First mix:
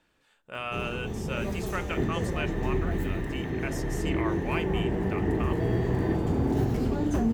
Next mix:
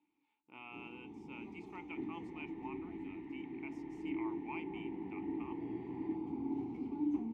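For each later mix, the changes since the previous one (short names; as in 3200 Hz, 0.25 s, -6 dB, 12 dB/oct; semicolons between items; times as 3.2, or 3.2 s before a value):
first sound -4.0 dB; master: add vowel filter u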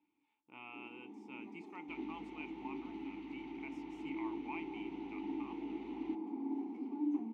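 first sound: add rippled Chebyshev high-pass 200 Hz, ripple 3 dB; second sound: remove ladder band-pass 1900 Hz, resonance 85%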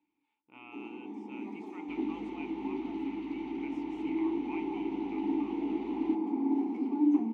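first sound +10.0 dB; second sound +5.5 dB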